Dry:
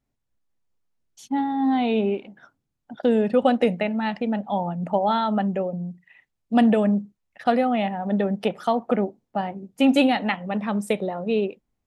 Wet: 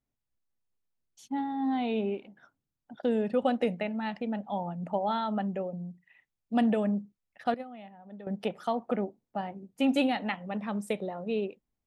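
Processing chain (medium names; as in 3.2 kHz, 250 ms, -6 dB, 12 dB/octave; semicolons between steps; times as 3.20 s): 7.54–8.27 s: gate -17 dBFS, range -15 dB; trim -8 dB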